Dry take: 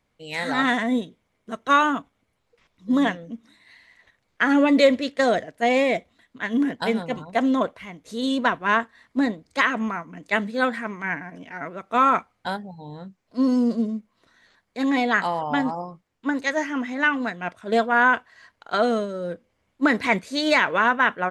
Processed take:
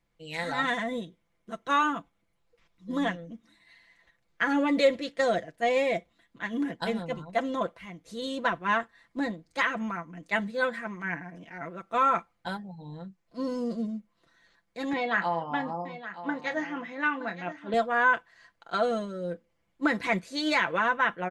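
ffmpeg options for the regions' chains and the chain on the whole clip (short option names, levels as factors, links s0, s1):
-filter_complex "[0:a]asettb=1/sr,asplit=3[s0][s1][s2];[s0]atrim=end=14.934[s3];[s1]atrim=start=14.93:end=17.74,asetpts=PTS-STARTPTS,afade=t=in:d=0.004:c=qsin,afade=t=out:st=2.806:d=0.004:c=qsin,highpass=140,lowpass=3900,asplit=2[s4][s5];[s5]adelay=30,volume=0.299[s6];[s4][s6]amix=inputs=2:normalize=0,atrim=end_sample=123921,aecho=1:1:921:0.224,atrim=end_sample=123921[s7];[s2]atrim=start=17.736[s8];[s3][s7]acrossfade=d=0.004:c1=hsin:c2=qsin[s9];[s9][s8]acrossfade=d=0.004:c1=qsin:c2=hsin,lowshelf=f=75:g=8,aecho=1:1:5.9:0.63,volume=0.422"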